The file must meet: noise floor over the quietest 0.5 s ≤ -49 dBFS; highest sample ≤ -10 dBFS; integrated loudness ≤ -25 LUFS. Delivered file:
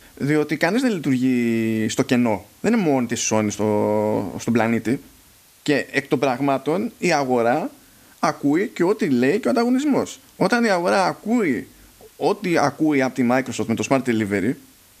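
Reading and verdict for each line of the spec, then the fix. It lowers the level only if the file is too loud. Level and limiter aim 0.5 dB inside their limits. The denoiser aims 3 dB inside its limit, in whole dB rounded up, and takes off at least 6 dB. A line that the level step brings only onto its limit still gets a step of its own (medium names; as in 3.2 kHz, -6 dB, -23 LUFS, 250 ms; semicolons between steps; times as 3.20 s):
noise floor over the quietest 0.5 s -52 dBFS: pass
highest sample -3.0 dBFS: fail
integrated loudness -20.5 LUFS: fail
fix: trim -5 dB; peak limiter -10.5 dBFS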